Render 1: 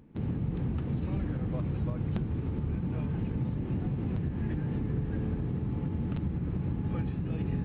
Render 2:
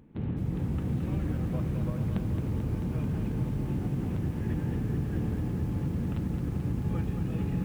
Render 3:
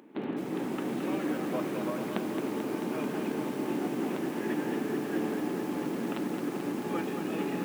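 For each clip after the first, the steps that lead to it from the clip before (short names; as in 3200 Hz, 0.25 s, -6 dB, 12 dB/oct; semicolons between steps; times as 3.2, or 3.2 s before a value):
lo-fi delay 0.219 s, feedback 80%, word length 9-bit, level -7 dB
HPF 290 Hz 24 dB/oct; notch 490 Hz, Q 12; gain +9 dB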